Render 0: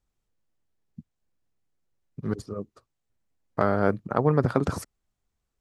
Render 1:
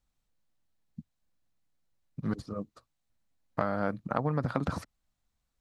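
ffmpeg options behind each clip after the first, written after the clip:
-filter_complex "[0:a]acrossover=split=4100[s0][s1];[s1]acompressor=threshold=0.002:ratio=4:attack=1:release=60[s2];[s0][s2]amix=inputs=2:normalize=0,equalizer=f=100:t=o:w=0.33:g=-5,equalizer=f=400:t=o:w=0.33:g=-11,equalizer=f=4000:t=o:w=0.33:g=4,acompressor=threshold=0.0562:ratio=5"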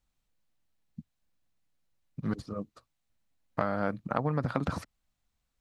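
-af "equalizer=f=2600:w=1.5:g=2.5"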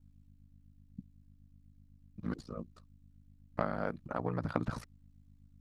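-af "aphaser=in_gain=1:out_gain=1:delay=3.9:decay=0.24:speed=1.1:type=triangular,aeval=exprs='val(0)+0.00224*(sin(2*PI*50*n/s)+sin(2*PI*2*50*n/s)/2+sin(2*PI*3*50*n/s)/3+sin(2*PI*4*50*n/s)/4+sin(2*PI*5*50*n/s)/5)':c=same,aeval=exprs='val(0)*sin(2*PI*29*n/s)':c=same,volume=0.75"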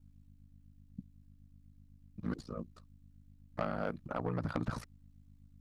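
-af "asoftclip=type=tanh:threshold=0.0631,volume=1.12"

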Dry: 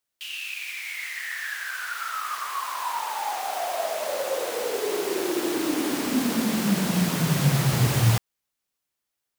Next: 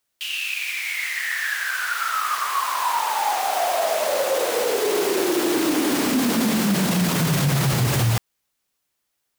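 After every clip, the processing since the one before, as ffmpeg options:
-af "alimiter=limit=0.106:level=0:latency=1:release=13,volume=2.24"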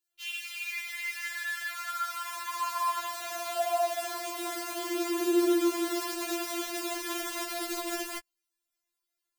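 -af "afftfilt=real='re*4*eq(mod(b,16),0)':imag='im*4*eq(mod(b,16),0)':win_size=2048:overlap=0.75,volume=0.422"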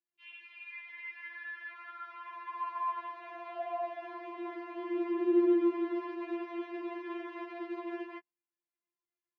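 -af "highpass=f=130:w=0.5412,highpass=f=130:w=1.3066,equalizer=f=190:t=q:w=4:g=6,equalizer=f=380:t=q:w=4:g=8,equalizer=f=590:t=q:w=4:g=-8,equalizer=f=940:t=q:w=4:g=5,equalizer=f=1400:t=q:w=4:g=-7,lowpass=f=2300:w=0.5412,lowpass=f=2300:w=1.3066,volume=0.501"

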